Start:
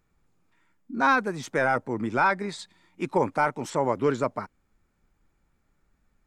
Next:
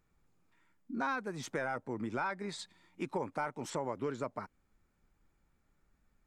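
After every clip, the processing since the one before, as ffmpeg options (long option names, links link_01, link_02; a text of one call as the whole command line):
ffmpeg -i in.wav -af "acompressor=threshold=-31dB:ratio=3,volume=-4dB" out.wav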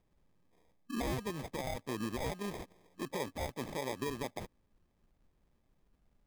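ffmpeg -i in.wav -af "alimiter=level_in=4.5dB:limit=-24dB:level=0:latency=1:release=91,volume=-4.5dB,acrusher=samples=31:mix=1:aa=0.000001,volume=1dB" out.wav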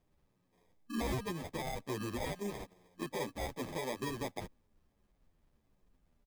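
ffmpeg -i in.wav -filter_complex "[0:a]asplit=2[link_01][link_02];[link_02]adelay=9.6,afreqshift=-1.3[link_03];[link_01][link_03]amix=inputs=2:normalize=1,volume=3dB" out.wav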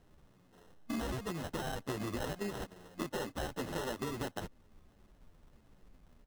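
ffmpeg -i in.wav -af "acompressor=threshold=-47dB:ratio=5,acrusher=samples=19:mix=1:aa=0.000001,volume=11dB" out.wav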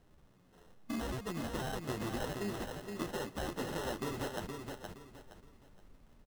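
ffmpeg -i in.wav -af "aecho=1:1:469|938|1407|1876:0.562|0.169|0.0506|0.0152,volume=-1dB" out.wav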